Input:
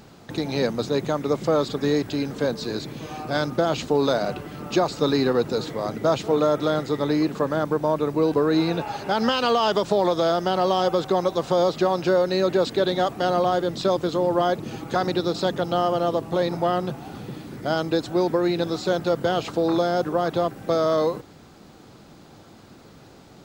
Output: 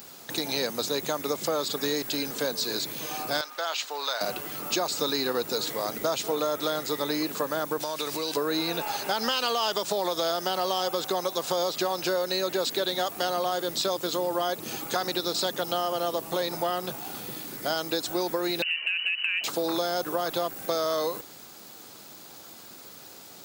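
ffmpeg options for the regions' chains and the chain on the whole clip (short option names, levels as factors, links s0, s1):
-filter_complex "[0:a]asettb=1/sr,asplit=3[s0][s1][s2];[s0]atrim=end=3.414[s3];[s1]atrim=start=3.41:end=4.21,asetpts=PTS-STARTPTS,afade=t=in:d=0.004:c=qsin,afade=t=out:st=0.796:d=0.004:c=qsin,highpass=1000,equalizer=f=12000:w=0.52:g=-14[s4];[s2]atrim=start=4.206[s5];[s3][s4]acrossfade=d=0.004:c1=hsin:c2=qsin[s6];[s6][s5]acrossfade=d=0.004:c1=qsin:c2=hsin,asettb=1/sr,asplit=3[s7][s8][s9];[s7]atrim=end=7.804[s10];[s8]atrim=start=7.8:end=8.37,asetpts=PTS-STARTPTS,afade=t=in:d=0.004:c=qsin,afade=t=out:st=0.566:d=0.004:c=qsin,equalizer=f=4600:t=o:w=2.3:g=15,acompressor=threshold=0.0562:ratio=6:attack=3.2:release=140:knee=1:detection=peak[s11];[s9]atrim=start=8.366[s12];[s10][s11]acrossfade=d=0.004:c1=hsin:c2=qsin[s13];[s13][s12]acrossfade=d=0.004:c1=qsin:c2=hsin,asettb=1/sr,asplit=3[s14][s15][s16];[s14]atrim=end=18.624[s17];[s15]atrim=start=18.62:end=19.44,asetpts=PTS-STARTPTS,afade=t=in:d=0.004:c=qsin,afade=t=out:st=0.816:d=0.004:c=qsin,lowpass=f=2600:t=q:w=0.5098,lowpass=f=2600:t=q:w=0.6013,lowpass=f=2600:t=q:w=0.9,lowpass=f=2600:t=q:w=2.563,afreqshift=-3100,acompressor=threshold=0.0631:ratio=6:attack=3.2:release=140:knee=1:detection=peak[s18];[s16]atrim=start=19.436[s19];[s17][s18]acrossfade=d=0.004:c1=hsin:c2=qsin[s20];[s20][s19]acrossfade=d=0.004:c1=qsin:c2=hsin,aemphasis=mode=production:type=riaa,acompressor=threshold=0.0562:ratio=3"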